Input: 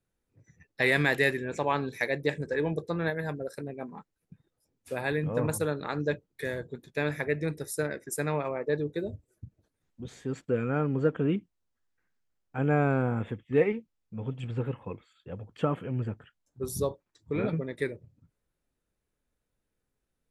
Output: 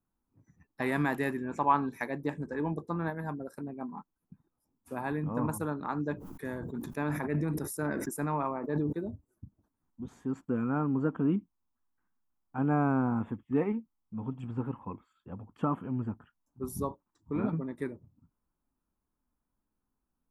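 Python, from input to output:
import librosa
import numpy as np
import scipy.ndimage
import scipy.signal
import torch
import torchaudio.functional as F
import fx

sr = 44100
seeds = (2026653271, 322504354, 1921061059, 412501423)

y = fx.peak_eq(x, sr, hz=1900.0, db=3.5, octaves=2.0, at=(1.51, 2.04))
y = fx.sustainer(y, sr, db_per_s=22.0, at=(6.14, 8.93))
y = fx.graphic_eq(y, sr, hz=(125, 250, 500, 1000, 2000, 4000, 8000), db=(-5, 7, -11, 10, -10, -12, -6))
y = y * librosa.db_to_amplitude(-1.0)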